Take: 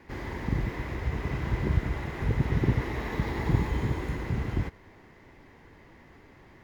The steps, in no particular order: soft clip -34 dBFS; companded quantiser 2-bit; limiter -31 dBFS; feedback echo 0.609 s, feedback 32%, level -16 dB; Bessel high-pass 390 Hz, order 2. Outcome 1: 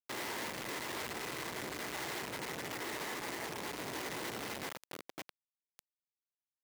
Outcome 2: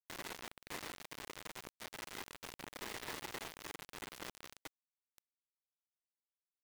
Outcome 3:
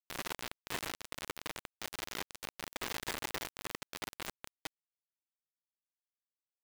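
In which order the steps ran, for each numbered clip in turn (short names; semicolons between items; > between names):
feedback echo > soft clip > companded quantiser > Bessel high-pass > limiter; feedback echo > limiter > Bessel high-pass > companded quantiser > soft clip; feedback echo > limiter > soft clip > Bessel high-pass > companded quantiser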